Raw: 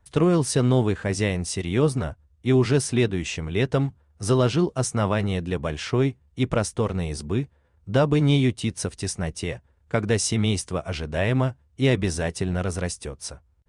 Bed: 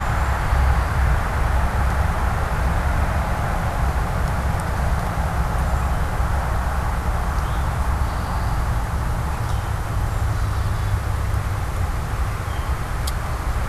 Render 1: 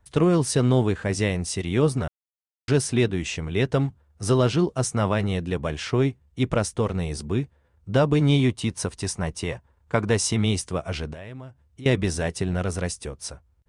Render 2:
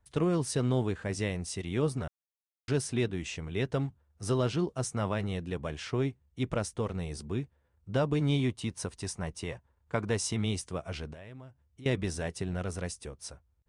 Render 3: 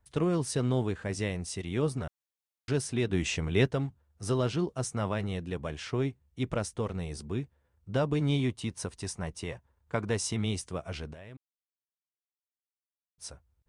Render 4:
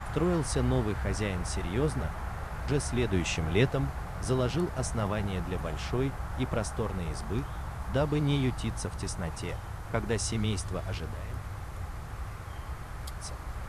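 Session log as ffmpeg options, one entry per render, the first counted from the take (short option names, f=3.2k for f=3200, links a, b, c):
-filter_complex "[0:a]asettb=1/sr,asplit=3[a][b][c];[a]atrim=end=8.394[d];[b]atrim=start=8.39:end=10.38,asetpts=PTS-STARTPTS,afade=t=in:d=0.004:c=qsin,afade=t=out:st=1.986:d=0.004:c=qsin,equalizer=f=1k:w=2.4:g=7[e];[c]atrim=start=10.376[f];[d][e]acrossfade=d=0.004:c1=hsin:c2=qsin[g];[g][f]acrossfade=d=0.004:c1=qsin:c2=hsin,asettb=1/sr,asplit=3[h][i][j];[h]atrim=end=11.134[k];[i]atrim=start=11.13:end=11.86,asetpts=PTS-STARTPTS,afade=t=in:d=0.004:c=qsin,afade=t=out:st=0.726:d=0.004:c=qsin,acompressor=threshold=-39dB:ratio=4:attack=3.2:release=140:knee=1:detection=peak[l];[j]atrim=start=11.856[m];[k][l]acrossfade=d=0.004:c1=hsin:c2=qsin[n];[n][m]acrossfade=d=0.004:c1=qsin:c2=hsin,asplit=3[o][p][q];[o]atrim=end=2.08,asetpts=PTS-STARTPTS,afade=t=out:st=2.076:d=0.004:c=hsin[r];[p]atrim=start=2.08:end=2.68,asetpts=PTS-STARTPTS,volume=0[s];[q]atrim=start=2.68,asetpts=PTS-STARTPTS,afade=t=in:d=0.004:c=hsin[t];[r][s][t]concat=n=3:v=0:a=1"
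-af "volume=-8.5dB"
-filter_complex "[0:a]asplit=3[a][b][c];[a]afade=t=out:st=3.1:d=0.02[d];[b]acontrast=74,afade=t=in:st=3.1:d=0.02,afade=t=out:st=3.67:d=0.02[e];[c]afade=t=in:st=3.67:d=0.02[f];[d][e][f]amix=inputs=3:normalize=0,asplit=3[g][h][i];[g]atrim=end=11.37,asetpts=PTS-STARTPTS,afade=t=out:st=11.366:d=0.004:c=hsin[j];[h]atrim=start=11.37:end=13.18,asetpts=PTS-STARTPTS,volume=0[k];[i]atrim=start=13.18,asetpts=PTS-STARTPTS,afade=t=in:d=0.004:c=hsin[l];[j][k][l]concat=n=3:v=0:a=1"
-filter_complex "[1:a]volume=-15.5dB[a];[0:a][a]amix=inputs=2:normalize=0"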